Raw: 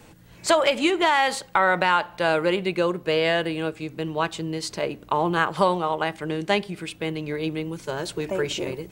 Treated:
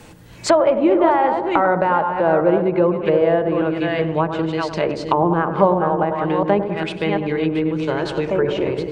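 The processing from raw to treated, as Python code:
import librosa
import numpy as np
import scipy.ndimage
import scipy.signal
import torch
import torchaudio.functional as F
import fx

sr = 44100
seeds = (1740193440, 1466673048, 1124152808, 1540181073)

y = fx.reverse_delay(x, sr, ms=402, wet_db=-7.0)
y = fx.echo_tape(y, sr, ms=99, feedback_pct=73, wet_db=-8.0, lp_hz=1000.0, drive_db=1.0, wow_cents=6)
y = fx.env_lowpass_down(y, sr, base_hz=890.0, full_db=-19.0)
y = y * 10.0 ** (6.5 / 20.0)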